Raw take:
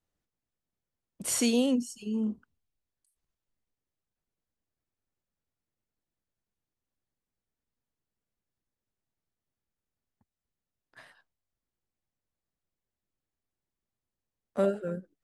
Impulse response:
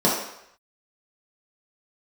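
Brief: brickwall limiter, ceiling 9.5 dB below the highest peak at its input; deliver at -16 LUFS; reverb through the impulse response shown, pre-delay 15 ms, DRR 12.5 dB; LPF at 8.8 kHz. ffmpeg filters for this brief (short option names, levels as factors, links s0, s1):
-filter_complex "[0:a]lowpass=8800,alimiter=level_in=1.06:limit=0.0631:level=0:latency=1,volume=0.944,asplit=2[s0][s1];[1:a]atrim=start_sample=2205,adelay=15[s2];[s1][s2]afir=irnorm=-1:irlink=0,volume=0.0299[s3];[s0][s3]amix=inputs=2:normalize=0,volume=7.08"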